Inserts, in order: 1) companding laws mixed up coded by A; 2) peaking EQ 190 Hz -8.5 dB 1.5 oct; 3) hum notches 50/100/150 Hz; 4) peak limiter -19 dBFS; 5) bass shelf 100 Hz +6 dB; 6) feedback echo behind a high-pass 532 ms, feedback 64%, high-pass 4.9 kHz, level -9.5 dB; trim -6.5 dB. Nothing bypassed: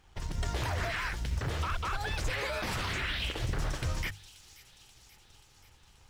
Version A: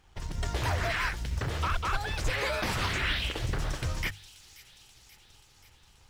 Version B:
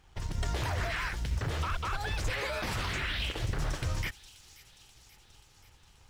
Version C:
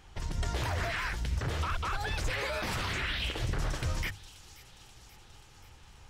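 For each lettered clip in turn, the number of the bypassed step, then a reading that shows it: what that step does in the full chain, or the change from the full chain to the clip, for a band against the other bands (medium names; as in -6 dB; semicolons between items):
4, crest factor change +2.0 dB; 3, momentary loudness spread change -1 LU; 1, distortion -27 dB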